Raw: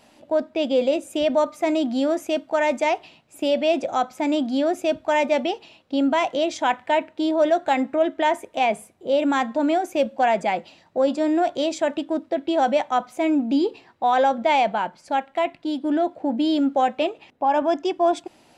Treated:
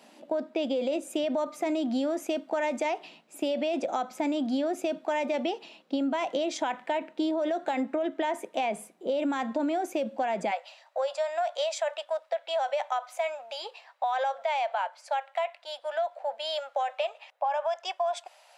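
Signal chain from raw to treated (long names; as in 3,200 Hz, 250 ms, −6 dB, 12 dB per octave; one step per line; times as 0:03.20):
elliptic high-pass filter 180 Hz, stop band 50 dB, from 0:10.50 580 Hz
brickwall limiter −17 dBFS, peak gain reduction 8 dB
downward compressor, threshold −25 dBFS, peak gain reduction 5.5 dB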